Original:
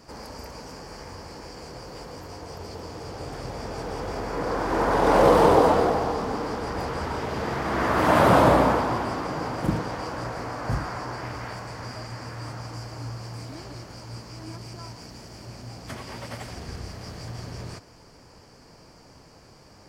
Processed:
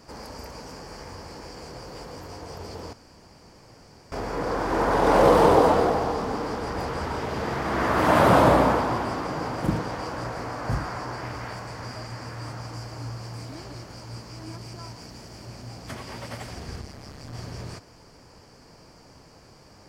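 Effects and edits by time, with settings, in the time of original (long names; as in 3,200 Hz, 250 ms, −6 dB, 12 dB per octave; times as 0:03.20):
0:02.93–0:04.12: fill with room tone
0:16.81–0:17.33: amplitude modulation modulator 140 Hz, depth 80%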